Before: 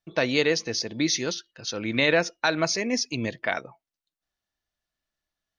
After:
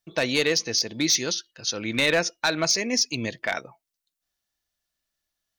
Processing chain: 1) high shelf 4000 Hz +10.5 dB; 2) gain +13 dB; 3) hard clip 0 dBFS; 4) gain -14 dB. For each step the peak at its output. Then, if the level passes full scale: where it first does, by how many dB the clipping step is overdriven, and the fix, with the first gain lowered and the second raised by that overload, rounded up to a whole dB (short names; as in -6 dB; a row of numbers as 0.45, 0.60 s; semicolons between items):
-5.5, +7.5, 0.0, -14.0 dBFS; step 2, 7.5 dB; step 2 +5 dB, step 4 -6 dB